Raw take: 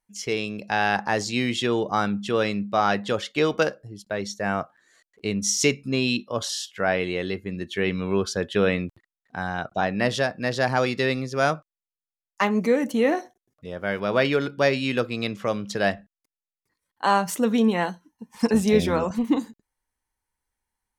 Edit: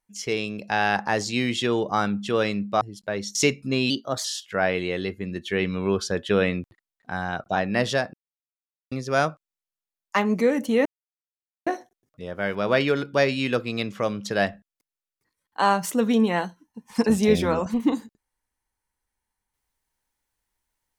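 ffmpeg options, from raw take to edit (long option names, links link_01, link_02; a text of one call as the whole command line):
ffmpeg -i in.wav -filter_complex "[0:a]asplit=8[link_01][link_02][link_03][link_04][link_05][link_06][link_07][link_08];[link_01]atrim=end=2.812[link_09];[link_02]atrim=start=3.838:end=4.382[link_10];[link_03]atrim=start=5.558:end=6.114[link_11];[link_04]atrim=start=6.11:end=6.5,asetpts=PTS-STARTPTS,asetrate=49833,aresample=44100,atrim=end_sample=15220,asetpts=PTS-STARTPTS[link_12];[link_05]atrim=start=6.496:end=10.39,asetpts=PTS-STARTPTS,afade=type=out:start_time=3.89:duration=0.004:curve=hsin[link_13];[link_06]atrim=start=10.39:end=11.17,asetpts=PTS-STARTPTS,volume=0[link_14];[link_07]atrim=start=11.17:end=13.11,asetpts=PTS-STARTPTS,afade=type=in:duration=0.004:curve=hsin,afade=type=out:start_time=1.936:duration=0.004:curve=hsin,apad=pad_dur=0.81[link_15];[link_08]atrim=start=13.11,asetpts=PTS-STARTPTS,afade=type=in:duration=0.004:curve=hsin[link_16];[link_09][link_10]acrossfade=duration=0.004:curve1=hsin:curve2=hsin[link_17];[link_17][link_11]acrossfade=duration=0.004:curve1=hsin:curve2=hsin[link_18];[link_18][link_12]acrossfade=duration=0.004:curve1=hsin:curve2=hsin[link_19];[link_13][link_14][link_15][link_16]concat=n=4:v=0:a=1[link_20];[link_19][link_20]acrossfade=duration=0.004:curve1=hsin:curve2=hsin" out.wav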